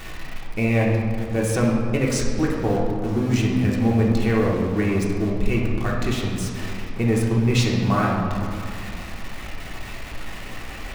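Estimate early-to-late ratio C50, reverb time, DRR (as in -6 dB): 1.5 dB, 2.2 s, -3.0 dB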